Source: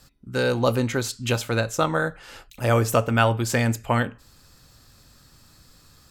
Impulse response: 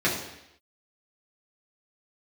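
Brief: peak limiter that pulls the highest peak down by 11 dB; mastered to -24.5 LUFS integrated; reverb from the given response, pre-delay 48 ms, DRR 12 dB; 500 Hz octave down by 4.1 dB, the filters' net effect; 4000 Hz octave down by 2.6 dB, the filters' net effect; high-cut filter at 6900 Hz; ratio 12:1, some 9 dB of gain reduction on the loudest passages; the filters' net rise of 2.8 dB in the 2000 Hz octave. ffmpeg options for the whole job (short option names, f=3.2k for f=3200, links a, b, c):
-filter_complex "[0:a]lowpass=6.9k,equalizer=f=500:t=o:g=-5,equalizer=f=2k:t=o:g=5.5,equalizer=f=4k:t=o:g=-5,acompressor=threshold=-23dB:ratio=12,alimiter=limit=-23dB:level=0:latency=1,asplit=2[a][b];[1:a]atrim=start_sample=2205,adelay=48[c];[b][c]afir=irnorm=-1:irlink=0,volume=-26dB[d];[a][d]amix=inputs=2:normalize=0,volume=8.5dB"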